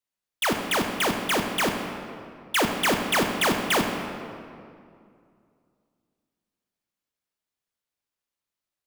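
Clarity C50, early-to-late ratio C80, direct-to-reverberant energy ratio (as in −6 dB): 4.5 dB, 5.5 dB, 3.5 dB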